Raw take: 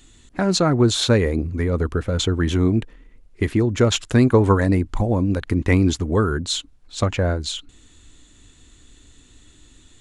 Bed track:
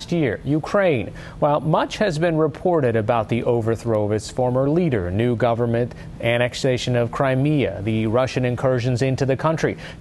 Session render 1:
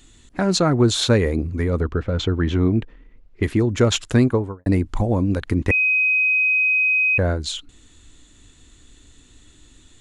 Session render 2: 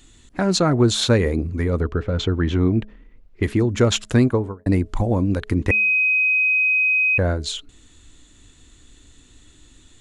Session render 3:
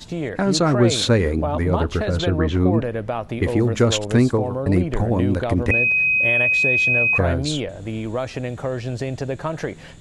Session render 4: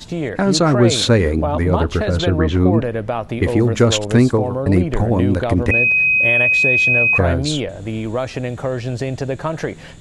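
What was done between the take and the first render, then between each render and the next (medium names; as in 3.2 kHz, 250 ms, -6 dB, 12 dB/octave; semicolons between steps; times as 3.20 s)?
1.80–3.43 s: distance through air 150 m; 4.11–4.66 s: studio fade out; 5.71–7.18 s: bleep 2.52 kHz -15 dBFS
de-hum 212 Hz, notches 3
add bed track -6.5 dB
trim +3.5 dB; peak limiter -3 dBFS, peak gain reduction 2.5 dB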